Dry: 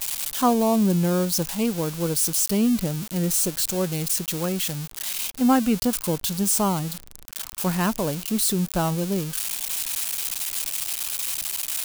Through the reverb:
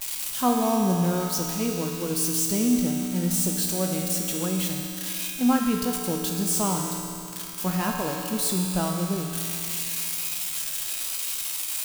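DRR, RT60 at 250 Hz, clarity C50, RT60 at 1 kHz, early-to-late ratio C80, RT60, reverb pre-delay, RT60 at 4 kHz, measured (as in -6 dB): -0.5 dB, 2.8 s, 1.5 dB, 2.8 s, 2.5 dB, 2.8 s, 3 ms, 2.8 s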